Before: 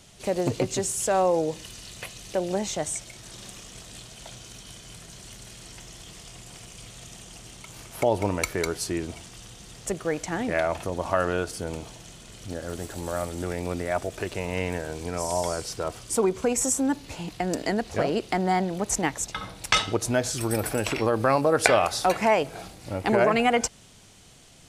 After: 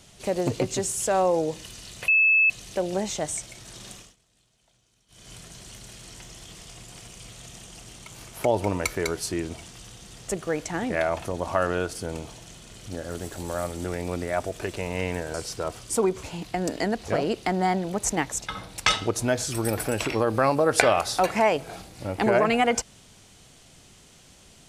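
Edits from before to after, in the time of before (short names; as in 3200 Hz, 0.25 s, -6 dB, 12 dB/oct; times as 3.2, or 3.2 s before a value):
2.08 add tone 2610 Hz -15.5 dBFS 0.42 s
3.51–4.89 dip -23.5 dB, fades 0.23 s
14.92–15.54 cut
16.43–17.09 cut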